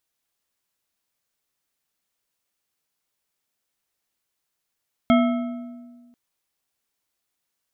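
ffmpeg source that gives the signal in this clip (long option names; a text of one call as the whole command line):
ffmpeg -f lavfi -i "aevalsrc='0.224*pow(10,-3*t/1.61)*sin(2*PI*242*t)+0.133*pow(10,-3*t/1.188)*sin(2*PI*667.2*t)+0.0794*pow(10,-3*t/0.971)*sin(2*PI*1307.8*t)+0.0473*pow(10,-3*t/0.835)*sin(2*PI*2161.8*t)+0.0282*pow(10,-3*t/0.74)*sin(2*PI*3228.3*t)':duration=1.04:sample_rate=44100" out.wav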